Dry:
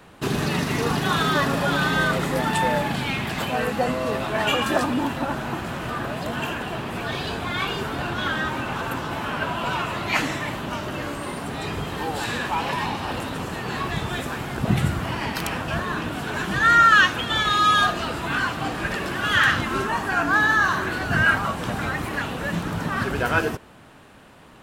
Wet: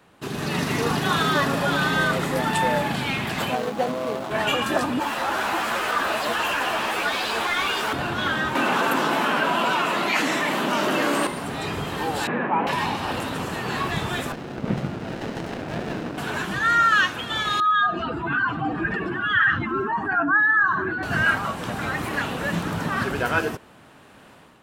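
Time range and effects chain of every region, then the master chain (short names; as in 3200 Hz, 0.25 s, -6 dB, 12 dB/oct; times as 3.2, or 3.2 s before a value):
3.55–4.31 median filter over 25 samples + HPF 260 Hz 6 dB/oct
5–7.93 RIAA curve recording + overdrive pedal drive 26 dB, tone 1300 Hz, clips at -11.5 dBFS + ensemble effect
8.55–11.27 HPF 190 Hz 24 dB/oct + fast leveller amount 70%
12.27–12.67 Chebyshev band-pass 170–2300 Hz, order 3 + tilt shelf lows +5.5 dB, about 1300 Hz
14.32–16.18 BPF 170–3200 Hz + running maximum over 33 samples
17.6–21.03 spectral contrast raised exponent 1.9 + bell 330 Hz +3.5 dB 0.27 oct + notch 570 Hz, Q 7
whole clip: low shelf 61 Hz -11 dB; AGC gain up to 9 dB; gain -7 dB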